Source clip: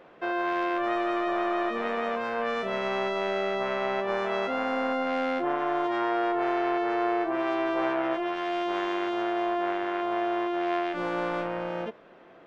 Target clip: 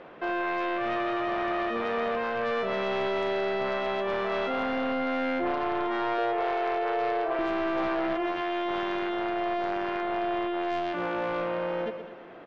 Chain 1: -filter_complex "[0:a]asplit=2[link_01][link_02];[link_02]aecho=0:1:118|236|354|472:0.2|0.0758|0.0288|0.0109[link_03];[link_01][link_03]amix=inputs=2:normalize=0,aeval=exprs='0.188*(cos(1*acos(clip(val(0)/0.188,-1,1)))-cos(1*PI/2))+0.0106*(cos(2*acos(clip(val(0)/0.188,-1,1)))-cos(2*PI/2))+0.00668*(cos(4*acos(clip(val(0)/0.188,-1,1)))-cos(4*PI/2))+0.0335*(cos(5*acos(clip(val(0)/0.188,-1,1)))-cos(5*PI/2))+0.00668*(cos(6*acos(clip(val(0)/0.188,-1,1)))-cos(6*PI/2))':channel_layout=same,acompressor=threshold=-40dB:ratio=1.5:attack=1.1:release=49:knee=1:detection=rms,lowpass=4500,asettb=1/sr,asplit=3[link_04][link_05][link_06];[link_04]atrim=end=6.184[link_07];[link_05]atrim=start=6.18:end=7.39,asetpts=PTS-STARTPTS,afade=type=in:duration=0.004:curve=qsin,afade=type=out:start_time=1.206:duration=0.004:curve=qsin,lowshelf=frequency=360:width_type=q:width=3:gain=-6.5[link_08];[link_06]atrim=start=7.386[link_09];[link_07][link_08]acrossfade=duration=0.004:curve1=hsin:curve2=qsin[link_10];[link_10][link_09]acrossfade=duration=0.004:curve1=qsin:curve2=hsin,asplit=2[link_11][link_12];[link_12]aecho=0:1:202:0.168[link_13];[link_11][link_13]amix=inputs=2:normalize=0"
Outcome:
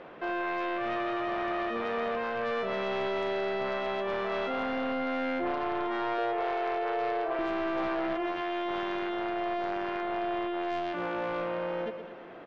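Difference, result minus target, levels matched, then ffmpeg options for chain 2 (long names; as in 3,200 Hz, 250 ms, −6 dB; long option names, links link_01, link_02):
downward compressor: peak gain reduction +2.5 dB
-filter_complex "[0:a]asplit=2[link_01][link_02];[link_02]aecho=0:1:118|236|354|472:0.2|0.0758|0.0288|0.0109[link_03];[link_01][link_03]amix=inputs=2:normalize=0,aeval=exprs='0.188*(cos(1*acos(clip(val(0)/0.188,-1,1)))-cos(1*PI/2))+0.0106*(cos(2*acos(clip(val(0)/0.188,-1,1)))-cos(2*PI/2))+0.00668*(cos(4*acos(clip(val(0)/0.188,-1,1)))-cos(4*PI/2))+0.0335*(cos(5*acos(clip(val(0)/0.188,-1,1)))-cos(5*PI/2))+0.00668*(cos(6*acos(clip(val(0)/0.188,-1,1)))-cos(6*PI/2))':channel_layout=same,acompressor=threshold=-32dB:ratio=1.5:attack=1.1:release=49:knee=1:detection=rms,lowpass=4500,asettb=1/sr,asplit=3[link_04][link_05][link_06];[link_04]atrim=end=6.184[link_07];[link_05]atrim=start=6.18:end=7.39,asetpts=PTS-STARTPTS,afade=type=in:duration=0.004:curve=qsin,afade=type=out:start_time=1.206:duration=0.004:curve=qsin,lowshelf=frequency=360:width_type=q:width=3:gain=-6.5[link_08];[link_06]atrim=start=7.386[link_09];[link_07][link_08]acrossfade=duration=0.004:curve1=hsin:curve2=qsin[link_10];[link_10][link_09]acrossfade=duration=0.004:curve1=qsin:curve2=hsin,asplit=2[link_11][link_12];[link_12]aecho=0:1:202:0.168[link_13];[link_11][link_13]amix=inputs=2:normalize=0"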